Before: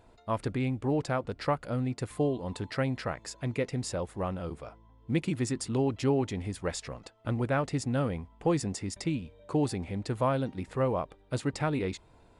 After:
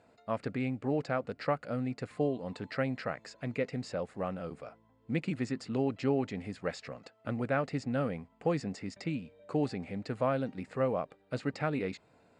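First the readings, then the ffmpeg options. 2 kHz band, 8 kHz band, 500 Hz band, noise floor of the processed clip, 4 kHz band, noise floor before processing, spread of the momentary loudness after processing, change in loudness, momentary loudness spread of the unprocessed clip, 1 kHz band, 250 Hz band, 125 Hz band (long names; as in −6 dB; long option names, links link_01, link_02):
−1.0 dB, −13.5 dB, −2.0 dB, −67 dBFS, −6.0 dB, −59 dBFS, 8 LU, −3.0 dB, 7 LU, −3.0 dB, −2.5 dB, −5.5 dB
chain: -filter_complex "[0:a]acrossover=split=5600[link_01][link_02];[link_02]acompressor=threshold=-60dB:ratio=4:attack=1:release=60[link_03];[link_01][link_03]amix=inputs=2:normalize=0,highpass=170,equalizer=frequency=350:width_type=q:width=4:gain=-7,equalizer=frequency=960:width_type=q:width=4:gain=-8,equalizer=frequency=3400:width_type=q:width=4:gain=-8,equalizer=frequency=5900:width_type=q:width=4:gain=-7,lowpass=frequency=8000:width=0.5412,lowpass=frequency=8000:width=1.3066"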